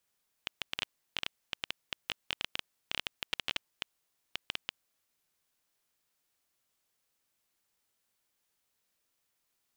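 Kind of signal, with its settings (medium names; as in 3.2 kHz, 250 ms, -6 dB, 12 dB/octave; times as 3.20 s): random clicks 9.5 per s -14.5 dBFS 4.43 s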